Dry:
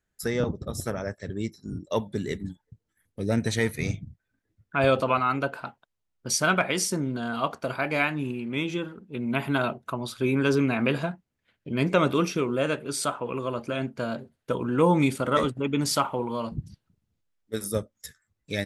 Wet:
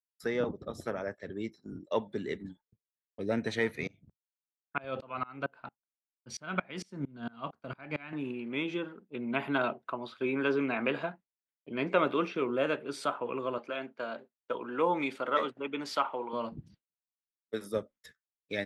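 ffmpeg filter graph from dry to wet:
ffmpeg -i in.wav -filter_complex "[0:a]asettb=1/sr,asplit=3[link_01][link_02][link_03];[link_01]atrim=end=3.874[link_04];[link_02]atrim=start=3.87:end=8.13,asetpts=PTS-STARTPTS,afade=type=in:duration=0.004:curve=qsin,afade=type=out:start_time=4.256:duration=0.004:curve=qsin,lowpass=9700,asubboost=boost=6:cutoff=190,aeval=exprs='val(0)*pow(10,-28*if(lt(mod(-4.4*n/s,1),2*abs(-4.4)/1000),1-mod(-4.4*n/s,1)/(2*abs(-4.4)/1000),(mod(-4.4*n/s,1)-2*abs(-4.4)/1000)/(1-2*abs(-4.4)/1000))/20)':channel_layout=same[link_05];[link_03]atrim=start=8.126[link_06];[link_04][link_05]acrossfade=duration=0.004:curve1=hsin:curve2=qsin[link_07];[link_07][link_06]acrossfade=duration=0.004:curve1=qsin:curve2=hsin,asettb=1/sr,asplit=3[link_08][link_09][link_10];[link_08]atrim=end=9.734[link_11];[link_09]atrim=start=9.73:end=12.42,asetpts=PTS-STARTPTS,afade=type=in:duration=0.004:curve=qsin,afade=type=out:start_time=2.686:duration=0.004:curve=qsin,acrossover=split=4400[link_12][link_13];[link_13]acompressor=threshold=-54dB:ratio=4:attack=1:release=60[link_14];[link_12][link_14]amix=inputs=2:normalize=0,lowshelf=frequency=270:gain=-5[link_15];[link_10]atrim=start=12.416[link_16];[link_11][link_15]acrossfade=duration=0.004:curve1=hsin:curve2=qsin[link_17];[link_17][link_16]acrossfade=duration=0.004:curve1=qsin:curve2=hsin,asettb=1/sr,asplit=3[link_18][link_19][link_20];[link_18]atrim=end=13.584[link_21];[link_19]atrim=start=13.58:end=16.33,asetpts=PTS-STARTPTS,afade=type=in:duration=0.004:curve=qsin,afade=type=out:start_time=2.746:duration=0.004:curve=qsin,highpass=frequency=550:poles=1,equalizer=frequency=9600:width_type=o:width=0.87:gain=-5[link_22];[link_20]atrim=start=16.326[link_23];[link_21][link_22]acrossfade=duration=0.004:curve1=hsin:curve2=qsin[link_24];[link_24][link_23]acrossfade=duration=0.004:curve1=qsin:curve2=hsin,agate=range=-33dB:threshold=-40dB:ratio=3:detection=peak,acrossover=split=220 4000:gain=0.224 1 0.141[link_25][link_26][link_27];[link_25][link_26][link_27]amix=inputs=3:normalize=0,volume=-3dB" out.wav

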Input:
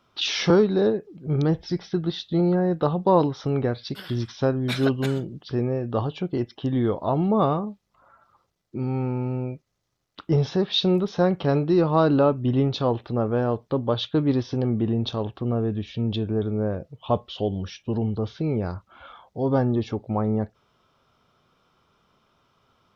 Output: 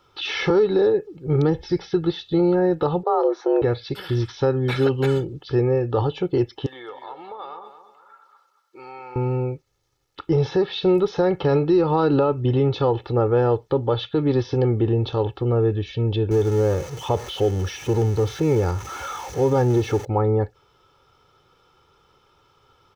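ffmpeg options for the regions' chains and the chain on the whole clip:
ffmpeg -i in.wav -filter_complex "[0:a]asettb=1/sr,asplit=3[link_01][link_02][link_03];[link_01]atrim=end=3.034[link_04];[link_02]atrim=start=3.03:end=3.62,asetpts=PTS-STARTPTS,afade=type=in:duration=0.004:curve=qsin,afade=type=out:start_time=0.586:duration=0.004:curve=qsin,equalizer=frequency=4700:width=0.37:gain=-12,afreqshift=220[link_05];[link_03]atrim=start=3.616[link_06];[link_04][link_05]acrossfade=duration=0.004:curve1=hsin:curve2=qsin[link_07];[link_07][link_06]acrossfade=duration=0.004:curve1=qsin:curve2=hsin,asettb=1/sr,asplit=3[link_08][link_09][link_10];[link_08]atrim=end=6.664[link_11];[link_09]atrim=start=6.66:end=9.16,asetpts=PTS-STARTPTS,afade=type=in:duration=0.004:curve=qsin,afade=type=out:start_time=2.496:duration=0.004:curve=qsin,highpass=940,acompressor=threshold=-42dB:ratio=2.5:attack=3.2:release=140:knee=1:detection=peak,aecho=1:1:225|450|675|900:0.299|0.104|0.0366|0.0128,atrim=end_sample=110250[link_12];[link_10]atrim=start=9.156[link_13];[link_11][link_12]acrossfade=duration=0.004:curve1=hsin:curve2=qsin[link_14];[link_14][link_13]acrossfade=duration=0.004:curve1=qsin:curve2=hsin,asettb=1/sr,asplit=3[link_15][link_16][link_17];[link_15]atrim=end=16.314[link_18];[link_16]atrim=start=16.31:end=20.05,asetpts=PTS-STARTPTS,afade=type=in:duration=0.004:curve=qsin,afade=type=out:start_time=3.736:duration=0.004:curve=qsin,aeval=exprs='val(0)+0.5*0.0178*sgn(val(0))':channel_layout=same,highpass=48,equalizer=frequency=6100:width=5.4:gain=13.5[link_19];[link_17]atrim=start=20.046[link_20];[link_18][link_19]acrossfade=duration=0.004:curve1=hsin:curve2=qsin[link_21];[link_21][link_20]acrossfade=duration=0.004:curve1=qsin:curve2=hsin,aecho=1:1:2.3:0.69,alimiter=limit=-14.5dB:level=0:latency=1:release=78,acrossover=split=2800[link_22][link_23];[link_23]acompressor=threshold=-44dB:ratio=4:attack=1:release=60[link_24];[link_22][link_24]amix=inputs=2:normalize=0,volume=4dB" out.wav

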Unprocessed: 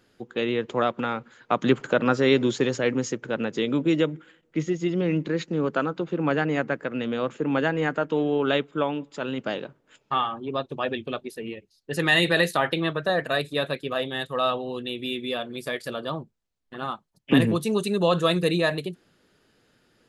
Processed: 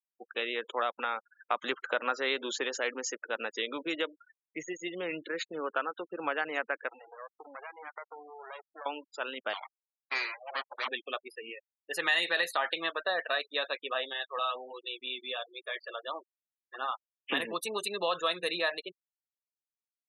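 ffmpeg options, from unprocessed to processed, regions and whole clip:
ffmpeg -i in.wav -filter_complex "[0:a]asettb=1/sr,asplit=3[link_01][link_02][link_03];[link_01]atrim=end=6.884[link_04];[link_02]atrim=start=6.88:end=8.86,asetpts=PTS-STARTPTS,afade=type=in:duration=0.004:curve=qsin,afade=type=out:start_time=1.976:duration=0.004:curve=qsin,aemphasis=mode=reproduction:type=cd,acompressor=threshold=-32dB:ratio=4:attack=3.2:release=140:knee=1:detection=peak,aeval=exprs='max(val(0),0)':channel_layout=same[link_05];[link_03]atrim=start=8.856[link_06];[link_04][link_05]acrossfade=duration=0.004:curve1=hsin:curve2=qsin[link_07];[link_07][link_06]acrossfade=duration=0.004:curve1=qsin:curve2=hsin,asettb=1/sr,asplit=3[link_08][link_09][link_10];[link_08]atrim=end=9.534[link_11];[link_09]atrim=start=9.53:end=10.88,asetpts=PTS-STARTPTS,afade=type=in:duration=0.004:curve=qsin,afade=type=out:start_time=1.346:duration=0.004:curve=qsin,asubboost=boost=3.5:cutoff=96,aeval=exprs='abs(val(0))':channel_layout=same,lowpass=6400[link_12];[link_10]atrim=start=10.876[link_13];[link_11][link_12]acrossfade=duration=0.004:curve1=hsin:curve2=qsin[link_14];[link_14][link_13]acrossfade=duration=0.004:curve1=qsin:curve2=hsin,asettb=1/sr,asplit=3[link_15][link_16][link_17];[link_15]atrim=end=14.134[link_18];[link_16]atrim=start=14.13:end=16.15,asetpts=PTS-STARTPTS,afade=type=in:duration=0.004:curve=qsin,afade=type=out:start_time=2.016:duration=0.004:curve=qsin,highpass=100,flanger=delay=5.6:depth=3.1:regen=-45:speed=1.4:shape=sinusoidal[link_19];[link_17]atrim=start=16.146[link_20];[link_18][link_19]acrossfade=duration=0.004:curve1=hsin:curve2=qsin[link_21];[link_21][link_20]acrossfade=duration=0.004:curve1=qsin:curve2=hsin,highpass=740,afftfilt=real='re*gte(hypot(re,im),0.0126)':imag='im*gte(hypot(re,im),0.0126)':win_size=1024:overlap=0.75,acompressor=threshold=-29dB:ratio=2" out.wav

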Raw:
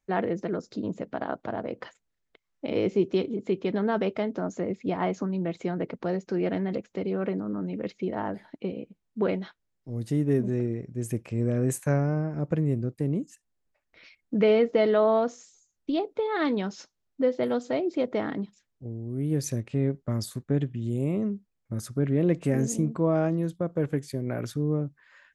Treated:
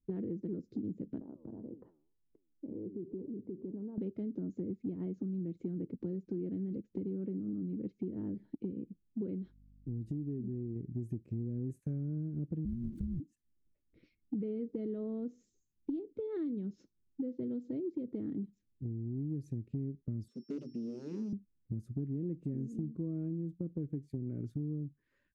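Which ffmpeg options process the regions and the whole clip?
ffmpeg -i in.wav -filter_complex "[0:a]asettb=1/sr,asplit=3[link_01][link_02][link_03];[link_01]atrim=end=1.214[link_04];[link_02]atrim=start=1.21:end=3.98,asetpts=PTS-STARTPTS,afade=type=in:duration=0.004:curve=qsin,afade=type=out:start_time=2.766:duration=0.004:curve=qsin,flanger=delay=5.7:depth=8.4:regen=86:speed=1.9:shape=triangular,acompressor=threshold=-43dB:ratio=3:attack=3.2:release=140:knee=1:detection=peak,lowpass=frequency=900:width_type=q:width=3.2[link_05];[link_03]atrim=start=3.976[link_06];[link_04][link_05]acrossfade=duration=0.004:curve1=hsin:curve2=qsin[link_07];[link_07][link_06]acrossfade=duration=0.004:curve1=qsin:curve2=hsin,asettb=1/sr,asplit=3[link_08][link_09][link_10];[link_08]atrim=end=9.424[link_11];[link_09]atrim=start=9.42:end=10.76,asetpts=PTS-STARTPTS,afade=type=in:duration=0.004:curve=qsin,afade=type=out:start_time=1.336:duration=0.004:curve=qsin,bandreject=frequency=2000:width=22,acompressor=threshold=-38dB:ratio=1.5:attack=3.2:release=140:knee=1:detection=peak,aeval=exprs='val(0)+0.000708*(sin(2*PI*50*n/s)+sin(2*PI*2*50*n/s)/2+sin(2*PI*3*50*n/s)/3+sin(2*PI*4*50*n/s)/4+sin(2*PI*5*50*n/s)/5)':channel_layout=same[link_12];[link_10]atrim=start=10.756[link_13];[link_11][link_12]acrossfade=duration=0.004:curve1=hsin:curve2=qsin[link_14];[link_14][link_13]acrossfade=duration=0.004:curve1=qsin:curve2=hsin,asettb=1/sr,asplit=3[link_15][link_16][link_17];[link_15]atrim=end=12.654[link_18];[link_16]atrim=start=12.65:end=13.2,asetpts=PTS-STARTPTS,afade=type=in:duration=0.004:curve=qsin,afade=type=out:start_time=0.546:duration=0.004:curve=qsin,aeval=exprs='val(0)+0.5*0.0299*sgn(val(0))':channel_layout=same,afreqshift=-350[link_19];[link_17]atrim=start=13.196[link_20];[link_18][link_19]acrossfade=duration=0.004:curve1=hsin:curve2=qsin[link_21];[link_21][link_20]acrossfade=duration=0.004:curve1=qsin:curve2=hsin,asettb=1/sr,asplit=3[link_22][link_23][link_24];[link_22]atrim=end=20.284[link_25];[link_23]atrim=start=20.28:end=21.33,asetpts=PTS-STARTPTS,afade=type=in:duration=0.004:curve=qsin,afade=type=out:start_time=1.046:duration=0.004:curve=qsin,aeval=exprs='val(0)+0.0112*sin(2*PI*5400*n/s)':channel_layout=same,aeval=exprs='0.0376*(abs(mod(val(0)/0.0376+3,4)-2)-1)':channel_layout=same,highpass=frequency=230:width=0.5412,highpass=frequency=230:width=1.3066,equalizer=frequency=230:width_type=q:width=4:gain=4,equalizer=frequency=390:width_type=q:width=4:gain=4,equalizer=frequency=730:width_type=q:width=4:gain=-4,equalizer=frequency=2700:width_type=q:width=4:gain=8,equalizer=frequency=5200:width_type=q:width=4:gain=-5,lowpass=frequency=7400:width=0.5412,lowpass=frequency=7400:width=1.3066[link_26];[link_24]atrim=start=21.326[link_27];[link_25][link_26]acrossfade=duration=0.004:curve1=hsin:curve2=qsin[link_28];[link_28][link_27]acrossfade=duration=0.004:curve1=qsin:curve2=hsin,firequalizer=gain_entry='entry(320,0);entry(710,-30);entry(1200,-29);entry(2200,-27)':delay=0.05:min_phase=1,acompressor=threshold=-39dB:ratio=6,volume=3.5dB" out.wav

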